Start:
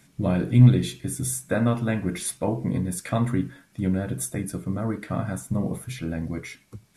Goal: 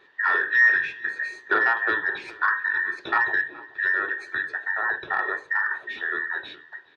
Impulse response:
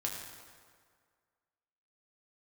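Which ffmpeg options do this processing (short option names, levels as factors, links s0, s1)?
-filter_complex "[0:a]afftfilt=real='real(if(between(b,1,1012),(2*floor((b-1)/92)+1)*92-b,b),0)':imag='imag(if(between(b,1,1012),(2*floor((b-1)/92)+1)*92-b,b),0)*if(between(b,1,1012),-1,1)':win_size=2048:overlap=0.75,asplit=2[s0][s1];[s1]aeval=exprs='0.133*(abs(mod(val(0)/0.133+3,4)-2)-1)':c=same,volume=0.398[s2];[s0][s2]amix=inputs=2:normalize=0,acontrast=27,highpass=130,equalizer=f=220:t=q:w=4:g=-5,equalizer=f=380:t=q:w=4:g=8,equalizer=f=980:t=q:w=4:g=8,equalizer=f=1900:t=q:w=4:g=-4,lowpass=f=3500:w=0.5412,lowpass=f=3500:w=1.3066,bandreject=f=50:t=h:w=6,bandreject=f=100:t=h:w=6,bandreject=f=150:t=h:w=6,bandreject=f=200:t=h:w=6,bandreject=f=250:t=h:w=6,bandreject=f=300:t=h:w=6,bandreject=f=350:t=h:w=6,bandreject=f=400:t=h:w=6,bandreject=f=450:t=h:w=6,bandreject=f=500:t=h:w=6,asplit=2[s3][s4];[s4]adelay=421,lowpass=f=2700:p=1,volume=0.1,asplit=2[s5][s6];[s6]adelay=421,lowpass=f=2700:p=1,volume=0.33,asplit=2[s7][s8];[s8]adelay=421,lowpass=f=2700:p=1,volume=0.33[s9];[s3][s5][s7][s9]amix=inputs=4:normalize=0,adynamicequalizer=threshold=0.0398:dfrequency=2600:dqfactor=0.7:tfrequency=2600:tqfactor=0.7:attack=5:release=100:ratio=0.375:range=1.5:mode=cutabove:tftype=highshelf,volume=0.596"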